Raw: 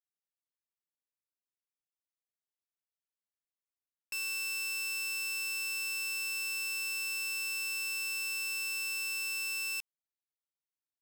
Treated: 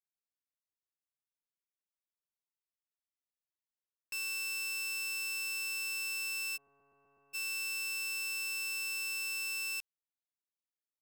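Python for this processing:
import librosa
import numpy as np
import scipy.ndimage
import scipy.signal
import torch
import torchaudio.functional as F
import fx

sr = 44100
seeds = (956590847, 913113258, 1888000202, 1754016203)

y = fx.lowpass(x, sr, hz=1000.0, slope=24, at=(6.56, 7.33), fade=0.02)
y = fx.upward_expand(y, sr, threshold_db=-50.0, expansion=1.5)
y = F.gain(torch.from_numpy(y), -1.5).numpy()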